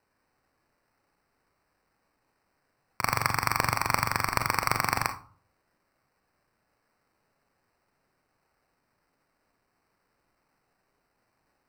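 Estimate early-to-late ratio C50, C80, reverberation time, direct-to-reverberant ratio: 12.0 dB, 18.0 dB, 0.40 s, 7.5 dB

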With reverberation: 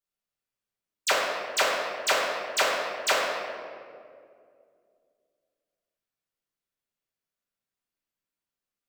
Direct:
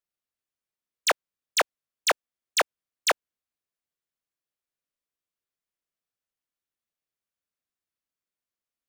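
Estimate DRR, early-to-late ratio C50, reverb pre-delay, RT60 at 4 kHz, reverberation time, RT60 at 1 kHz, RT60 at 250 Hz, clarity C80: −6.5 dB, 0.0 dB, 5 ms, 1.2 s, 2.3 s, 1.9 s, 2.8 s, 2.0 dB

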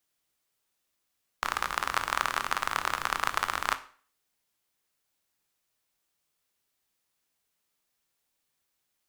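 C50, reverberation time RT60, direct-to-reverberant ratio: 16.0 dB, 0.45 s, 10.5 dB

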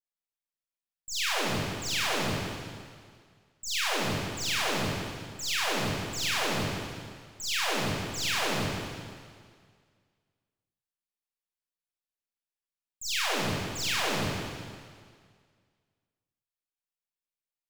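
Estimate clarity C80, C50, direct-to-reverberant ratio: −1.0 dB, −3.5 dB, −8.5 dB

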